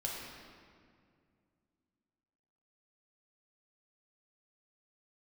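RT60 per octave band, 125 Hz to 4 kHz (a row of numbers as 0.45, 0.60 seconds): 3.0, 3.1, 2.4, 2.0, 1.8, 1.4 seconds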